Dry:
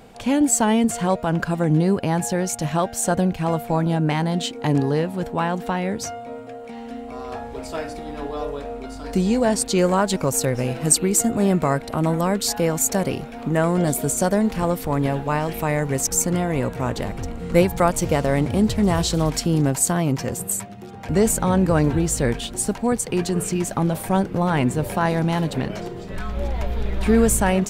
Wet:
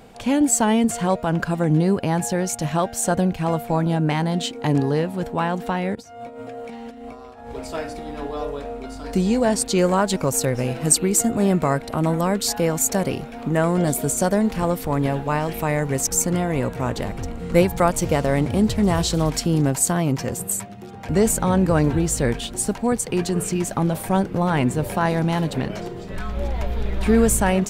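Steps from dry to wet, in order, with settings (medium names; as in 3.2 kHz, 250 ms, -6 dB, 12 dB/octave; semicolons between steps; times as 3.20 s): 5.95–7.52 s: compressor with a negative ratio -36 dBFS, ratio -0.5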